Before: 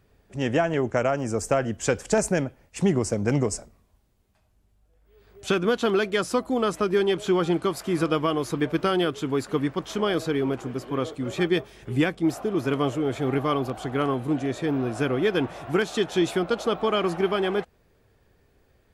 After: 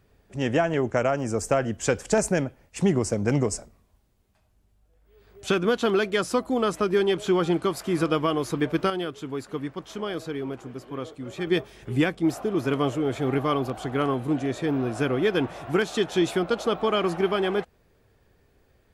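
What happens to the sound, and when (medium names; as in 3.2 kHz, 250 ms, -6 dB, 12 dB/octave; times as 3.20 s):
8.90–11.47 s: gain -6.5 dB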